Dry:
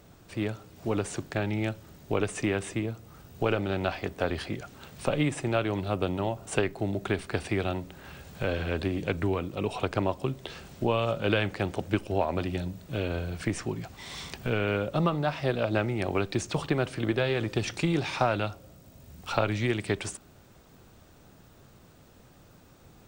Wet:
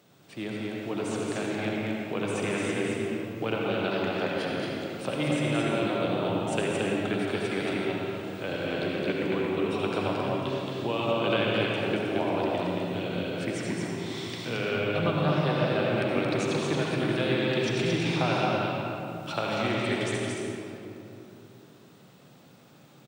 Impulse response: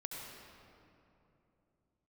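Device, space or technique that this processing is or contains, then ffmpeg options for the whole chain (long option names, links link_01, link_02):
stadium PA: -filter_complex "[0:a]highpass=frequency=130:width=0.5412,highpass=frequency=130:width=1.3066,equalizer=frequency=3400:width_type=o:width=0.95:gain=5,aecho=1:1:224.5|265.3:0.708|0.282[link_01];[1:a]atrim=start_sample=2205[link_02];[link_01][link_02]afir=irnorm=-1:irlink=0"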